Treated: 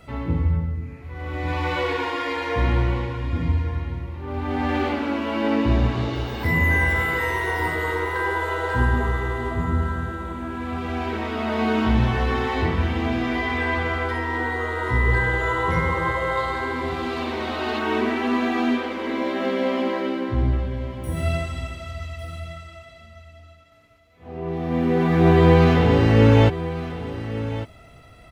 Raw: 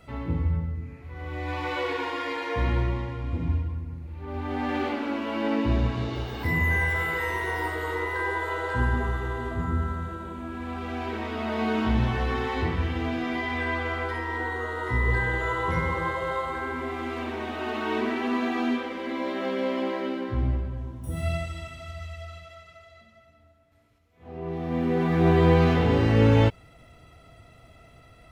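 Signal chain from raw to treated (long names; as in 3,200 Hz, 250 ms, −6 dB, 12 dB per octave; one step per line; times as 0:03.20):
0:16.37–0:17.79: parametric band 4,300 Hz +8.5 dB 0.65 octaves
single-tap delay 1,152 ms −13.5 dB
level +4.5 dB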